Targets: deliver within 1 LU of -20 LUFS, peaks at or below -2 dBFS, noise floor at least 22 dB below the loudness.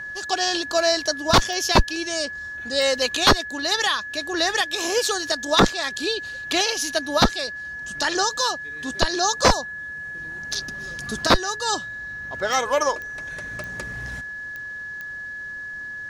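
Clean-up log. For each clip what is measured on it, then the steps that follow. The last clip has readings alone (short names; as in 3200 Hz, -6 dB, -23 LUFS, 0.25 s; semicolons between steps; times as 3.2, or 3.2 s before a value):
clicks 7; steady tone 1700 Hz; tone level -31 dBFS; loudness -23.0 LUFS; peak -7.0 dBFS; loudness target -20.0 LUFS
-> de-click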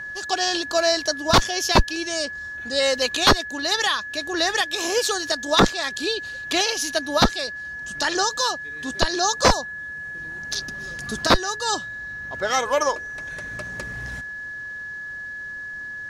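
clicks 0; steady tone 1700 Hz; tone level -31 dBFS
-> notch 1700 Hz, Q 30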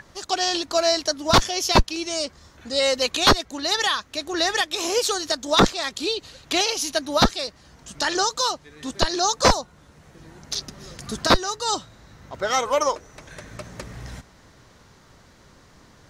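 steady tone none; loudness -22.0 LUFS; peak -6.0 dBFS; loudness target -20.0 LUFS
-> gain +2 dB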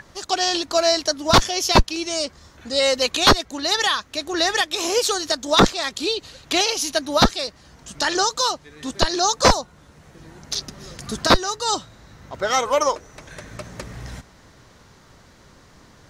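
loudness -20.0 LUFS; peak -4.0 dBFS; noise floor -51 dBFS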